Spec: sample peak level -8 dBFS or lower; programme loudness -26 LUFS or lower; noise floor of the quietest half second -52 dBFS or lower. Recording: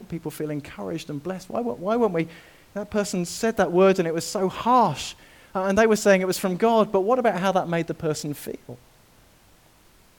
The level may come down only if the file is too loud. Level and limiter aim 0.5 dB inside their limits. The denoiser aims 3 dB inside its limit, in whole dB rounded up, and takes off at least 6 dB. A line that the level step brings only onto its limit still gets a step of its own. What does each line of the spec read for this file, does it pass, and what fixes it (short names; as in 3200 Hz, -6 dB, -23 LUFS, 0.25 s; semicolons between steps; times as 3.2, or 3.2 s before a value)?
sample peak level -6.0 dBFS: fail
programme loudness -23.5 LUFS: fail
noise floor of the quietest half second -56 dBFS: OK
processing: gain -3 dB